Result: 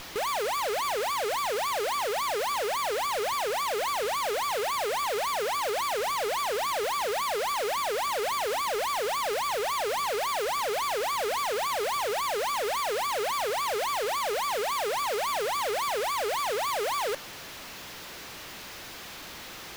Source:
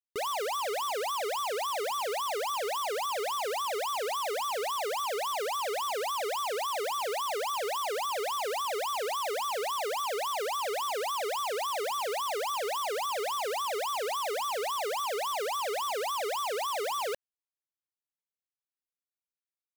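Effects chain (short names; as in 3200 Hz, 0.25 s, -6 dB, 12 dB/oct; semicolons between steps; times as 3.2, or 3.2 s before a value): in parallel at -6.5 dB: requantised 6-bit, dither triangular; on the sum: running maximum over 5 samples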